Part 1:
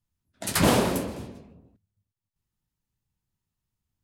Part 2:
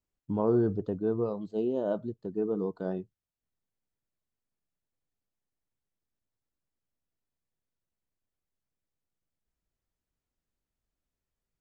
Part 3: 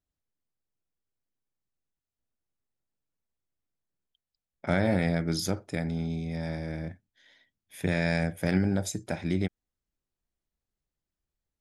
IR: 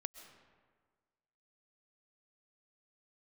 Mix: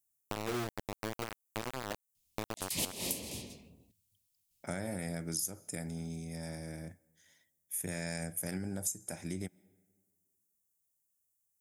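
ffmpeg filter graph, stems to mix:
-filter_complex "[0:a]equalizer=frequency=1500:width_type=o:width=0.46:gain=-15,aexciter=amount=4.1:drive=7.4:freq=2000,adelay=2150,volume=-6.5dB[link_01];[1:a]highshelf=frequency=2500:gain=2,acrusher=bits=3:mix=0:aa=0.000001,volume=-3dB,asplit=2[link_02][link_03];[2:a]highpass=73,aexciter=amount=12.5:drive=5.8:freq=6100,volume=-9.5dB,asplit=2[link_04][link_05];[link_05]volume=-15.5dB[link_06];[link_03]apad=whole_len=272560[link_07];[link_01][link_07]sidechaincompress=threshold=-45dB:ratio=6:attack=7.5:release=126[link_08];[3:a]atrim=start_sample=2205[link_09];[link_06][link_09]afir=irnorm=-1:irlink=0[link_10];[link_08][link_02][link_04][link_10]amix=inputs=4:normalize=0,acompressor=threshold=-34dB:ratio=4"

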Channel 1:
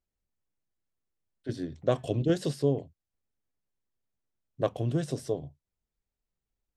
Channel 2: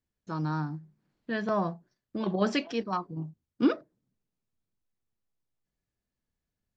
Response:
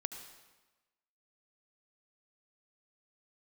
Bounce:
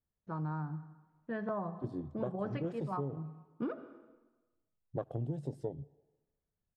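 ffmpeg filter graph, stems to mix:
-filter_complex "[0:a]bandreject=frequency=5800:width=8.8,afwtdn=0.02,equalizer=frequency=140:width_type=o:width=0.37:gain=4,adelay=350,volume=-4.5dB,asplit=2[link_01][link_02];[link_02]volume=-18dB[link_03];[1:a]lowpass=1300,equalizer=frequency=290:width_type=o:width=0.66:gain=-6.5,volume=-5.5dB,asplit=3[link_04][link_05][link_06];[link_05]volume=-4.5dB[link_07];[link_06]apad=whole_len=313617[link_08];[link_01][link_08]sidechaincompress=threshold=-37dB:ratio=8:attack=43:release=312[link_09];[2:a]atrim=start_sample=2205[link_10];[link_03][link_07]amix=inputs=2:normalize=0[link_11];[link_11][link_10]afir=irnorm=-1:irlink=0[link_12];[link_09][link_04][link_12]amix=inputs=3:normalize=0,acompressor=threshold=-33dB:ratio=6"

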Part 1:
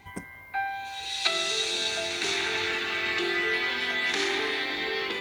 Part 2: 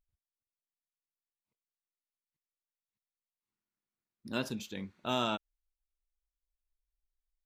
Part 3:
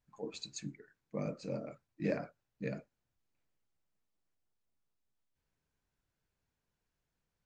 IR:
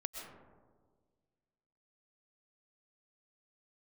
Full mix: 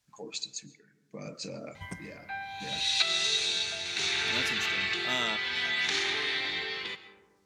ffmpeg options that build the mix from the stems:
-filter_complex "[0:a]lowpass=frequency=3400:poles=1,lowshelf=frequency=200:width_type=q:width=1.5:gain=7.5,adelay=1750,volume=-2.5dB,asplit=2[link_01][link_02];[link_02]volume=-15.5dB[link_03];[1:a]volume=-6dB[link_04];[2:a]alimiter=level_in=9dB:limit=-24dB:level=0:latency=1:release=103,volume=-9dB,volume=2.5dB,asplit=2[link_05][link_06];[link_06]volume=-18.5dB[link_07];[link_01][link_05]amix=inputs=2:normalize=0,tremolo=f=0.66:d=0.77,acompressor=threshold=-37dB:ratio=4,volume=0dB[link_08];[3:a]atrim=start_sample=2205[link_09];[link_03][link_07]amix=inputs=2:normalize=0[link_10];[link_10][link_09]afir=irnorm=-1:irlink=0[link_11];[link_04][link_08][link_11]amix=inputs=3:normalize=0,highpass=56,equalizer=frequency=5900:width=0.35:gain=13.5"

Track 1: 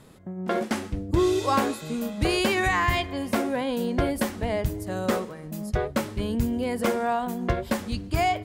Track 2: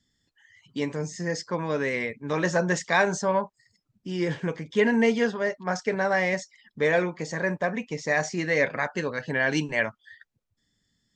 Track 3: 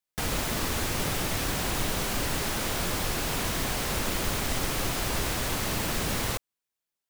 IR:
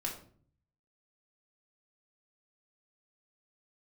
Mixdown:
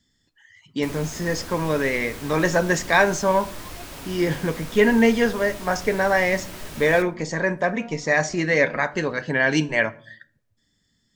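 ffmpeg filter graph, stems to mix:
-filter_complex "[0:a]lowpass=frequency=1800:poles=1,asoftclip=type=tanh:threshold=-29dB,aphaser=in_gain=1:out_gain=1:delay=4.6:decay=0.73:speed=0.57:type=sinusoidal,adelay=800,volume=-16.5dB,asplit=2[link_01][link_02];[link_02]volume=-9.5dB[link_03];[1:a]volume=3dB,asplit=3[link_04][link_05][link_06];[link_05]volume=-12.5dB[link_07];[2:a]adelay=650,volume=-12.5dB,asplit=2[link_08][link_09];[link_09]volume=-5dB[link_10];[link_06]apad=whole_len=407673[link_11];[link_01][link_11]sidechaincompress=threshold=-25dB:ratio=8:attack=16:release=745[link_12];[3:a]atrim=start_sample=2205[link_13];[link_03][link_07][link_10]amix=inputs=3:normalize=0[link_14];[link_14][link_13]afir=irnorm=-1:irlink=0[link_15];[link_12][link_04][link_08][link_15]amix=inputs=4:normalize=0"

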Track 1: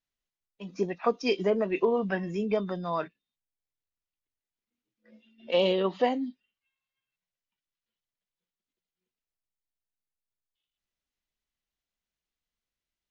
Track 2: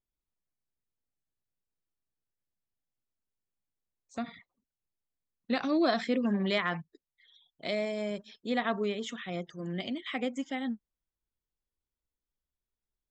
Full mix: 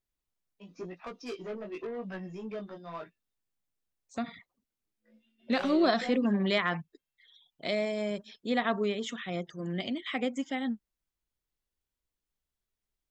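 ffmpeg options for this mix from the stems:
ffmpeg -i stem1.wav -i stem2.wav -filter_complex "[0:a]asoftclip=type=tanh:threshold=-26dB,flanger=delay=16:depth=3.4:speed=0.92,volume=-5.5dB[link_01];[1:a]volume=1.5dB[link_02];[link_01][link_02]amix=inputs=2:normalize=0" out.wav

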